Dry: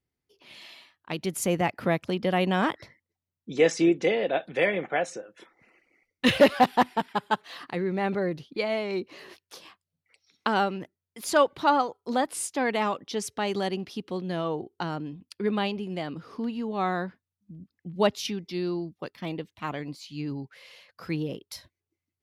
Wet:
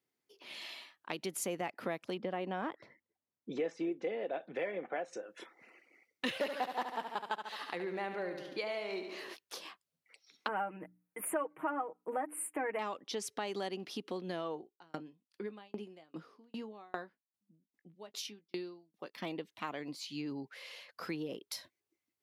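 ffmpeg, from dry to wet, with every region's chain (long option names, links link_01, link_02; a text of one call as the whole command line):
ffmpeg -i in.wav -filter_complex "[0:a]asettb=1/sr,asplit=3[link_01][link_02][link_03];[link_01]atrim=end=2.174[link_04];[link_02]atrim=start=2.17:end=5.13,asetpts=PTS-STARTPTS,afade=type=in:duration=0.004:curve=qsin,afade=type=out:start_time=2.956:duration=0.004:curve=qsin,lowpass=frequency=1300:poles=1,aphaser=in_gain=1:out_gain=1:delay=4.1:decay=0.21:speed=1.3:type=sinusoidal[link_05];[link_03]atrim=start=5.126[link_06];[link_04][link_05]acrossfade=duration=0.004:curve1=hsin:curve2=qsin[link_07];[link_07][link_06]acrossfade=duration=0.004:curve1=qsin:curve2=hsin,asettb=1/sr,asplit=3[link_08][link_09][link_10];[link_08]atrim=end=6.384[link_11];[link_09]atrim=start=6.38:end=9.21,asetpts=PTS-STARTPTS,afade=type=in:duration=0.004:curve=qsin,afade=type=out:start_time=2.826:duration=0.004:curve=qsin,lowshelf=frequency=330:gain=-8.5,aecho=1:1:71|142|213|284|355|426|497:0.376|0.207|0.114|0.0625|0.0344|0.0189|0.0104,atrim=end_sample=124803[link_12];[link_10]atrim=start=9.206[link_13];[link_11][link_12]acrossfade=duration=0.004:curve1=hsin:curve2=qsin[link_14];[link_14][link_13]acrossfade=duration=0.004:curve1=qsin:curve2=hsin,asettb=1/sr,asplit=3[link_15][link_16][link_17];[link_15]atrim=end=10.484[link_18];[link_16]atrim=start=10.48:end=12.79,asetpts=PTS-STARTPTS,afade=type=in:duration=0.004:curve=qsin,afade=type=out:start_time=2.306:duration=0.004:curve=qsin,asuperstop=centerf=4800:order=8:qfactor=0.76,bandreject=frequency=60:width_type=h:width=6,bandreject=frequency=120:width_type=h:width=6,bandreject=frequency=180:width_type=h:width=6,bandreject=frequency=240:width_type=h:width=6,bandreject=frequency=300:width_type=h:width=6,aecho=1:1:6.4:0.7,atrim=end_sample=101871[link_19];[link_17]atrim=start=12.786[link_20];[link_18][link_19]acrossfade=duration=0.004:curve1=hsin:curve2=qsin[link_21];[link_21][link_20]acrossfade=duration=0.004:curve1=qsin:curve2=hsin,asettb=1/sr,asplit=3[link_22][link_23][link_24];[link_22]atrim=end=14.544[link_25];[link_23]atrim=start=14.54:end=19.14,asetpts=PTS-STARTPTS,afade=type=in:duration=0.004:curve=qsin,afade=type=out:start_time=4.596:duration=0.004:curve=qsin,asplit=2[link_26][link_27];[link_27]adelay=19,volume=-10.5dB[link_28];[link_26][link_28]amix=inputs=2:normalize=0,atrim=end_sample=202860,aeval=exprs='val(0)*pow(10,-39*if(lt(mod(2.5*n/s,1),2*abs(2.5)/1000),1-mod(2.5*n/s,1)/(2*abs(2.5)/1000),(mod(2.5*n/s,1)-2*abs(2.5)/1000)/(1-2*abs(2.5)/1000))/20)':channel_layout=same[link_29];[link_24]atrim=start=19.136[link_30];[link_25][link_29]acrossfade=duration=0.004:curve1=hsin:curve2=qsin[link_31];[link_31][link_30]acrossfade=duration=0.004:curve1=qsin:curve2=hsin,highpass=260,acompressor=threshold=-39dB:ratio=3,volume=1dB" out.wav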